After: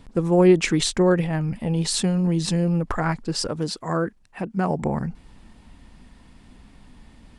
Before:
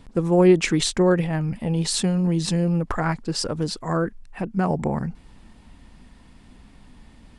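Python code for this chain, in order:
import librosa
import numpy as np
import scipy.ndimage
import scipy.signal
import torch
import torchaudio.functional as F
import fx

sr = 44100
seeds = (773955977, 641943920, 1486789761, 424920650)

y = fx.highpass(x, sr, hz=120.0, slope=6, at=(3.47, 4.83))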